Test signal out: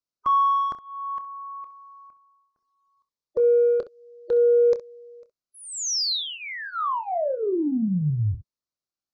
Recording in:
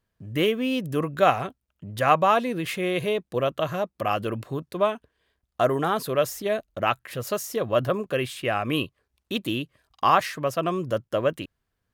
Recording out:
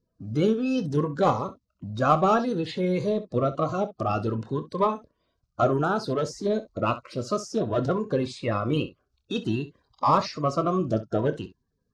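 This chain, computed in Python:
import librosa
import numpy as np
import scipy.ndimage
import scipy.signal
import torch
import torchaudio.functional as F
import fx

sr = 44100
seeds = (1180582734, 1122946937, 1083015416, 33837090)

p1 = fx.spec_quant(x, sr, step_db=30)
p2 = scipy.signal.sosfilt(scipy.signal.butter(4, 6000.0, 'lowpass', fs=sr, output='sos'), p1)
p3 = fx.band_shelf(p2, sr, hz=2400.0, db=-10.0, octaves=1.2)
p4 = 10.0 ** (-20.5 / 20.0) * np.tanh(p3 / 10.0 ** (-20.5 / 20.0))
p5 = p3 + (p4 * 10.0 ** (-7.0 / 20.0))
p6 = fx.room_early_taps(p5, sr, ms=(27, 65), db=(-12.5, -15.5))
y = fx.notch_cascade(p6, sr, direction='rising', hz=0.58)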